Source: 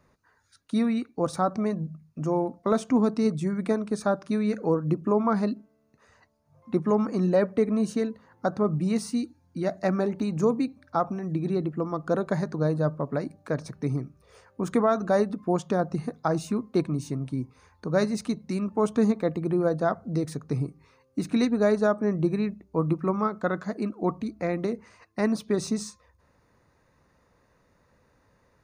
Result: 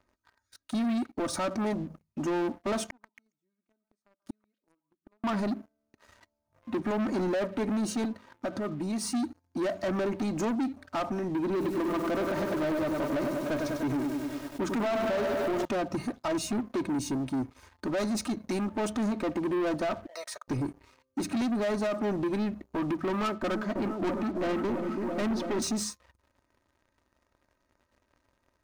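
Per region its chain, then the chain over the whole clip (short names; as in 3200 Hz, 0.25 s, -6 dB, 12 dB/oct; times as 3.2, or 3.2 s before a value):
2.87–5.24 flipped gate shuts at -27 dBFS, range -41 dB + delay with a stepping band-pass 0.138 s, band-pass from 1100 Hz, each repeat 1.4 oct, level -6 dB
8.05–9.1 HPF 88 Hz + compressor 2.5:1, threshold -32 dBFS
11.45–15.65 LPF 5400 Hz + lo-fi delay 99 ms, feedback 80%, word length 8-bit, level -7 dB
20.06–20.48 elliptic high-pass 570 Hz, stop band 50 dB + high shelf 8900 Hz -4.5 dB
23.09–25.62 hard clip -22.5 dBFS + air absorption 120 m + repeats that get brighter 0.332 s, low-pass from 400 Hz, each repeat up 1 oct, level -6 dB
whole clip: comb 3.2 ms, depth 73%; limiter -18 dBFS; sample leveller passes 3; gain -7 dB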